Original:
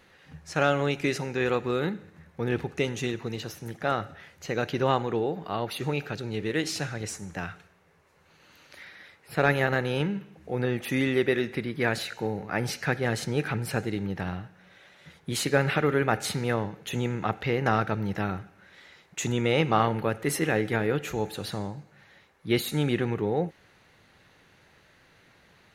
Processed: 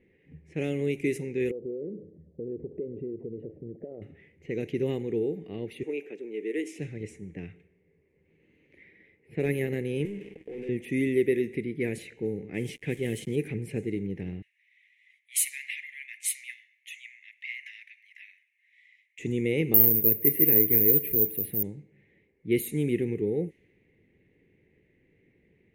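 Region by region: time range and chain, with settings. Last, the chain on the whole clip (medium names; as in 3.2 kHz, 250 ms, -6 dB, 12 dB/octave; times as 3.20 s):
1.51–4.02 s: resonances exaggerated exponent 1.5 + resonant low-pass 600 Hz, resonance Q 4.2 + compression 4:1, threshold -32 dBFS
5.83–6.79 s: high-pass 300 Hz 24 dB/octave + peaking EQ 4.3 kHz -11.5 dB 0.39 oct
10.05–10.69 s: high-pass 330 Hz + waveshaping leveller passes 5 + compression 20:1, threshold -33 dBFS
12.54–13.36 s: peaking EQ 3.2 kHz +12.5 dB 0.36 oct + upward compressor, threshold -37 dBFS + small samples zeroed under -37 dBFS
14.42–19.19 s: steep high-pass 1.8 kHz 72 dB/octave + treble shelf 2.6 kHz +9.5 dB
19.74–21.63 s: distance through air 260 m + careless resampling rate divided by 3×, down filtered, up zero stuff
whole clip: FFT filter 120 Hz 0 dB, 430 Hz +6 dB, 1.4 kHz -15 dB, 2.1 kHz +2 dB, 4.5 kHz -16 dB, 9.7 kHz +8 dB; level-controlled noise filter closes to 2 kHz, open at -18 dBFS; high-order bell 930 Hz -12.5 dB; trim -4 dB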